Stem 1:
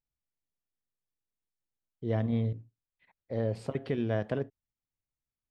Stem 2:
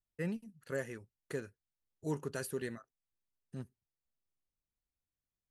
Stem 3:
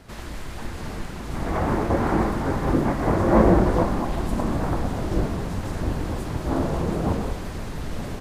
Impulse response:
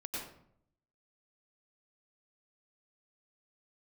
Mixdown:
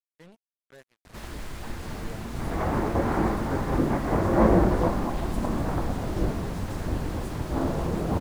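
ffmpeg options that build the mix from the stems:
-filter_complex "[0:a]volume=0.237[s0];[1:a]lowshelf=f=80:g=-9.5,volume=0.211[s1];[2:a]adelay=1050,volume=0.708[s2];[s0][s1][s2]amix=inputs=3:normalize=0,acrusher=bits=7:mix=0:aa=0.5"

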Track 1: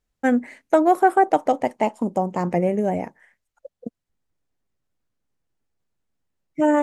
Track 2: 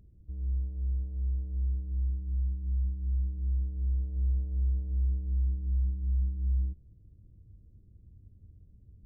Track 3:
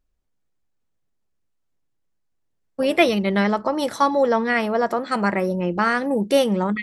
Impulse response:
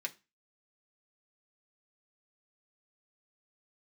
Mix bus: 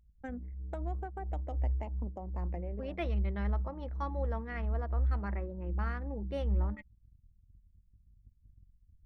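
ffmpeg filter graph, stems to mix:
-filter_complex "[0:a]acrossover=split=140|3000[s0][s1][s2];[s1]acompressor=threshold=0.112:ratio=8[s3];[s0][s3][s2]amix=inputs=3:normalize=0,volume=0.106[s4];[1:a]bandreject=f=550:w=12,flanger=delay=18:depth=7.9:speed=0.6,volume=1[s5];[2:a]lowpass=f=1700:p=1,equalizer=f=450:w=0.82:g=-2.5,volume=0.112,asplit=3[s6][s7][s8];[s7]volume=0.224[s9];[s8]apad=whole_len=301124[s10];[s4][s10]sidechaincompress=threshold=0.00355:ratio=10:attack=29:release=831[s11];[3:a]atrim=start_sample=2205[s12];[s9][s12]afir=irnorm=-1:irlink=0[s13];[s11][s5][s6][s13]amix=inputs=4:normalize=0,anlmdn=0.0251"

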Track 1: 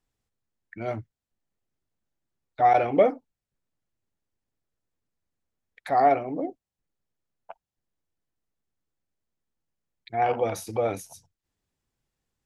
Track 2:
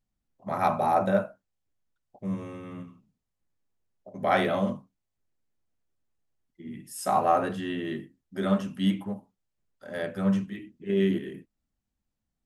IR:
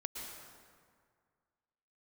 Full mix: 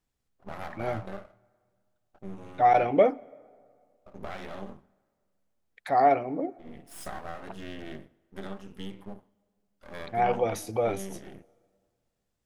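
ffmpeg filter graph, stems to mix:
-filter_complex "[0:a]volume=0.841,asplit=2[s0][s1];[s1]volume=0.0708[s2];[1:a]acompressor=threshold=0.0316:ratio=8,aeval=exprs='max(val(0),0)':c=same,volume=0.75,asplit=2[s3][s4];[s4]volume=0.0631[s5];[2:a]atrim=start_sample=2205[s6];[s2][s5]amix=inputs=2:normalize=0[s7];[s7][s6]afir=irnorm=-1:irlink=0[s8];[s0][s3][s8]amix=inputs=3:normalize=0"

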